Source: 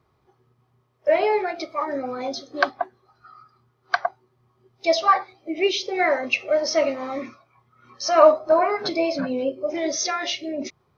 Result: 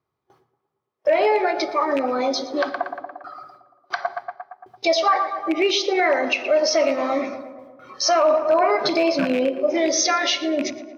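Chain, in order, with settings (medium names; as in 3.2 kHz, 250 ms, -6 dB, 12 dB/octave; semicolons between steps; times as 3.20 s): rattle on loud lows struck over -32 dBFS, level -23 dBFS; gate with hold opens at -48 dBFS; hum notches 60/120/180/240 Hz; tape echo 115 ms, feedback 68%, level -12.5 dB, low-pass 1.9 kHz; in parallel at +1 dB: compression, threshold -29 dBFS, peak gain reduction 19 dB; on the sum: high-pass 120 Hz 6 dB/octave; on a send at -21 dB: reverberation RT60 0.90 s, pre-delay 7 ms; on the sum: peak limiter -12 dBFS, peak gain reduction 10.5 dB; trim +2 dB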